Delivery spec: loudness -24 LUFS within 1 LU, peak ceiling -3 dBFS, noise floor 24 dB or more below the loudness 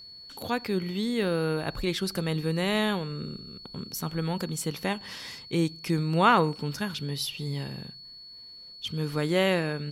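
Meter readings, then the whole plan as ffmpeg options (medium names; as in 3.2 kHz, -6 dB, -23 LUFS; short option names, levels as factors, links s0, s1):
steady tone 4.4 kHz; tone level -44 dBFS; loudness -28.5 LUFS; peak level -8.5 dBFS; loudness target -24.0 LUFS
-> -af "bandreject=f=4400:w=30"
-af "volume=1.68"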